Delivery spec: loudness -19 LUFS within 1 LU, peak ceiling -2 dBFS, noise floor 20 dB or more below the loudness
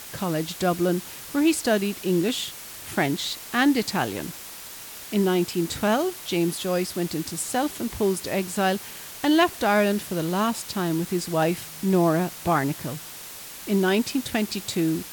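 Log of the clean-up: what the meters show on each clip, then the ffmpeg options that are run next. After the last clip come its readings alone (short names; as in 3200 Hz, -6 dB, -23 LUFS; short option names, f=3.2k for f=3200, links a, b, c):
noise floor -40 dBFS; noise floor target -45 dBFS; loudness -24.5 LUFS; peak -7.0 dBFS; loudness target -19.0 LUFS
-> -af "afftdn=nr=6:nf=-40"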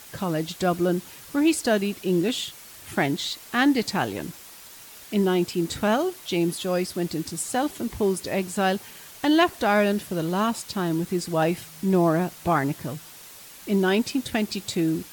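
noise floor -45 dBFS; loudness -25.0 LUFS; peak -7.0 dBFS; loudness target -19.0 LUFS
-> -af "volume=6dB,alimiter=limit=-2dB:level=0:latency=1"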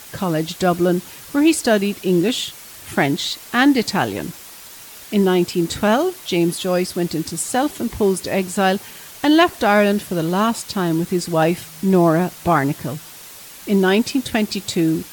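loudness -19.0 LUFS; peak -2.0 dBFS; noise floor -39 dBFS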